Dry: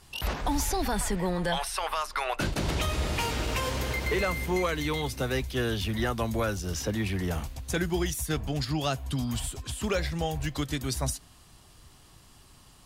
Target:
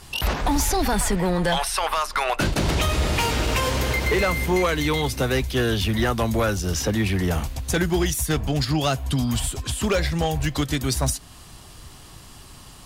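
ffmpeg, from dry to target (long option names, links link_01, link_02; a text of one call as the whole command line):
ffmpeg -i in.wav -filter_complex "[0:a]asplit=2[link_01][link_02];[link_02]acompressor=threshold=-40dB:ratio=6,volume=-2.5dB[link_03];[link_01][link_03]amix=inputs=2:normalize=0,volume=21dB,asoftclip=hard,volume=-21dB,volume=6dB" out.wav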